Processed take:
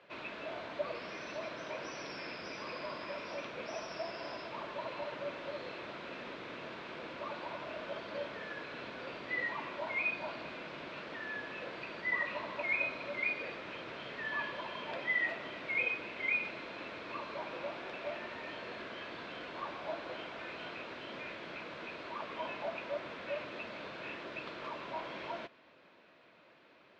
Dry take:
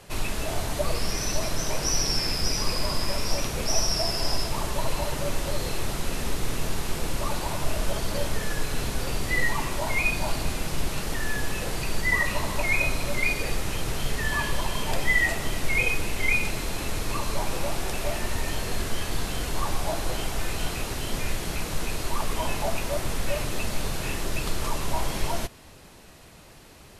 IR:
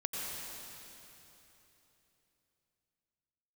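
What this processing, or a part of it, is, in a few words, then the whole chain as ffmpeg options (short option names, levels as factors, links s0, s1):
phone earpiece: -af "highpass=410,equalizer=f=420:t=q:w=4:g=-6,equalizer=f=800:t=q:w=4:g=-10,equalizer=f=1200:t=q:w=4:g=-4,equalizer=f=1900:t=q:w=4:g=-5,equalizer=f=2900:t=q:w=4:g=-5,lowpass=f=3000:w=0.5412,lowpass=f=3000:w=1.3066,volume=0.631"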